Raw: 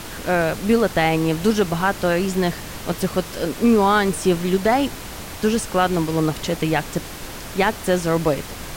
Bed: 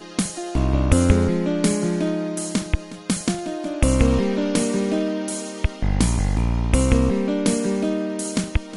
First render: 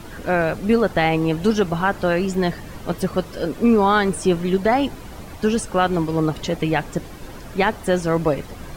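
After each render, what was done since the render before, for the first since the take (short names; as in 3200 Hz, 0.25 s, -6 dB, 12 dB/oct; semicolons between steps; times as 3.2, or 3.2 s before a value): denoiser 11 dB, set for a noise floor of -34 dBFS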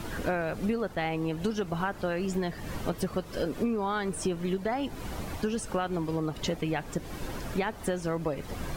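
compressor 12:1, threshold -26 dBFS, peak gain reduction 15 dB; attack slew limiter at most 440 dB/s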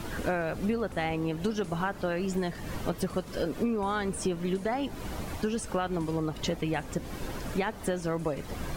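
add bed -28.5 dB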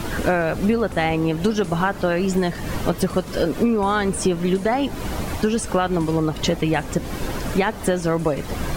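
gain +10 dB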